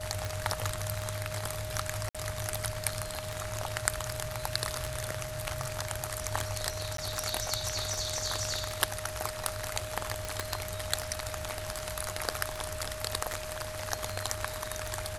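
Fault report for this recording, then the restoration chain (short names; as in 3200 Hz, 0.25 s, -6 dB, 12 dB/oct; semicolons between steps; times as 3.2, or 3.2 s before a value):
tick 78 rpm
tone 620 Hz -40 dBFS
2.09–2.15 gap 56 ms
6.97–6.98 gap 13 ms
10.4 pop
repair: de-click; notch 620 Hz, Q 30; interpolate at 2.09, 56 ms; interpolate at 6.97, 13 ms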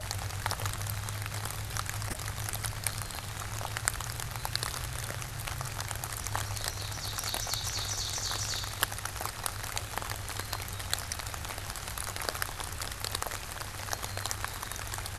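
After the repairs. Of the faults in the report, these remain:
none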